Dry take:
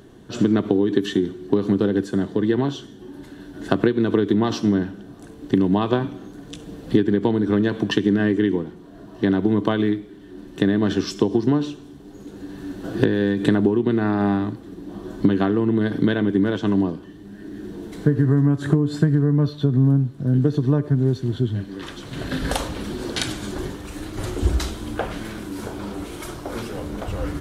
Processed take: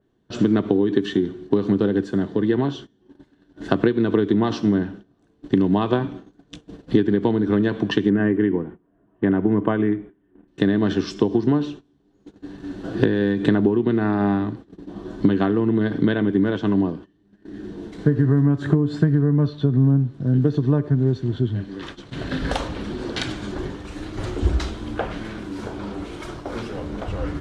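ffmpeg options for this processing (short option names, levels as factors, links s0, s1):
-filter_complex "[0:a]asettb=1/sr,asplit=3[s0][s1][s2];[s0]atrim=end=8.104[s3];[s1]atrim=start=8.1:end=10.48,asetpts=PTS-STARTPTS,afade=t=in:d=0.004:c=qsin,afade=t=out:st=2.376:d=0.004:c=qsin,asuperstop=centerf=5100:order=4:qfactor=0.67[s4];[s2]atrim=start=10.476[s5];[s3][s4]acrossfade=d=0.004:c1=hsin:c2=qsin[s6];[s6][s5]acrossfade=d=0.004:c1=qsin:c2=hsin,agate=range=0.1:threshold=0.0178:ratio=16:detection=peak,lowpass=5900,adynamicequalizer=threshold=0.00631:dfrequency=3300:dqfactor=0.7:tfrequency=3300:tqfactor=0.7:attack=5:release=100:ratio=0.375:range=2:mode=cutabove:tftype=highshelf"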